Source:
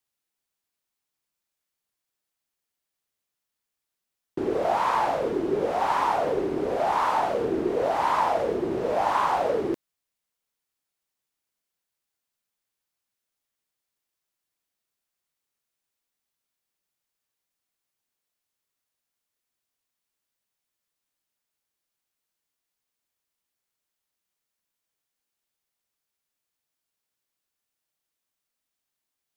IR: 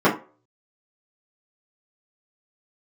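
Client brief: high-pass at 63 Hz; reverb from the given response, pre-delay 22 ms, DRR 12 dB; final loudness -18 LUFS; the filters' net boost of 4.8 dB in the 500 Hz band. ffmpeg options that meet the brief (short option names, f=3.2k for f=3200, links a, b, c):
-filter_complex "[0:a]highpass=63,equalizer=f=500:t=o:g=6,asplit=2[a][b];[1:a]atrim=start_sample=2205,adelay=22[c];[b][c]afir=irnorm=-1:irlink=0,volume=-33.5dB[d];[a][d]amix=inputs=2:normalize=0,volume=3.5dB"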